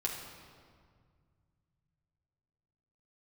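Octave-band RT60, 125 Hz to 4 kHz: 4.0 s, 2.8 s, 2.0 s, 1.9 s, 1.6 s, 1.4 s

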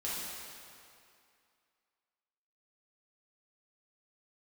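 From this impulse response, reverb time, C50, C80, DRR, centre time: 2.4 s, -2.5 dB, -0.5 dB, -8.5 dB, 152 ms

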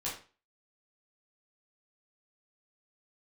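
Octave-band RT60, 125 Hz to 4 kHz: 0.40 s, 0.35 s, 0.35 s, 0.35 s, 0.35 s, 0.30 s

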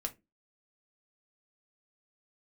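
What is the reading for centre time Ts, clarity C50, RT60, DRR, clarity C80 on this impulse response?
6 ms, 19.0 dB, no single decay rate, 3.5 dB, 28.5 dB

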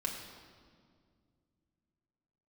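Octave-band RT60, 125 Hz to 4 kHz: 3.4 s, 3.1 s, 2.3 s, 1.8 s, 1.5 s, 1.5 s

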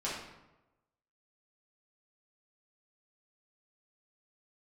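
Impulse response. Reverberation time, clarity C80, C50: 1.0 s, 5.0 dB, 1.5 dB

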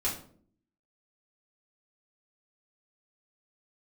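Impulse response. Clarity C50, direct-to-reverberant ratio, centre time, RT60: 7.5 dB, -7.0 dB, 28 ms, 0.55 s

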